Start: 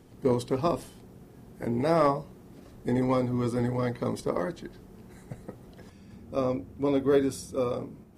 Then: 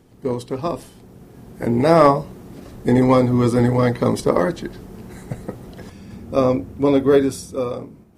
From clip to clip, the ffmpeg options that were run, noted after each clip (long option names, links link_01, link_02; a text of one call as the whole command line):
ffmpeg -i in.wav -af "dynaudnorm=framelen=240:gausssize=11:maxgain=11.5dB,volume=1.5dB" out.wav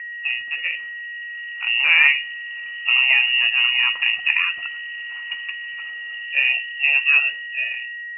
ffmpeg -i in.wav -af "aeval=exprs='val(0)+0.0447*sin(2*PI*1100*n/s)':channel_layout=same,lowpass=frequency=2600:width_type=q:width=0.5098,lowpass=frequency=2600:width_type=q:width=0.6013,lowpass=frequency=2600:width_type=q:width=0.9,lowpass=frequency=2600:width_type=q:width=2.563,afreqshift=-3000,volume=-2.5dB" out.wav